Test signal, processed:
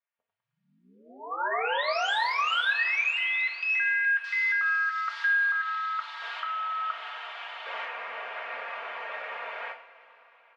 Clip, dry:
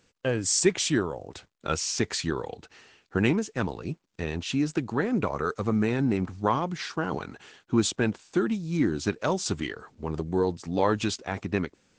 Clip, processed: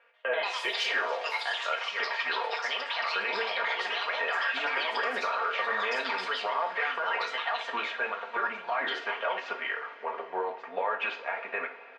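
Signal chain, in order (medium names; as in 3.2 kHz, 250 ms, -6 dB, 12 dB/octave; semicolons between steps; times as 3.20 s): elliptic band-pass 570–2500 Hz, stop band 70 dB; ever faster or slower copies 137 ms, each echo +4 st, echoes 3; peaking EQ 730 Hz -3 dB 0.24 oct; compression, threshold -29 dBFS; comb 4.3 ms, depth 68%; peak limiter -27.5 dBFS; two-slope reverb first 0.37 s, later 4.9 s, from -21 dB, DRR 1.5 dB; trim +5.5 dB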